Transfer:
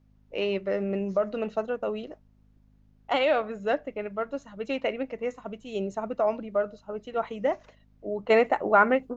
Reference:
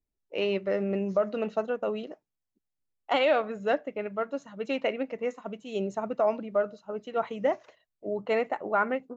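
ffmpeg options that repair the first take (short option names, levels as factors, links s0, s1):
-af "bandreject=f=51.5:t=h:w=4,bandreject=f=103:t=h:w=4,bandreject=f=154.5:t=h:w=4,bandreject=f=206:t=h:w=4,bandreject=f=257.5:t=h:w=4,agate=range=0.0891:threshold=0.00251,asetnsamples=n=441:p=0,asendcmd='8.3 volume volume -6.5dB',volume=1"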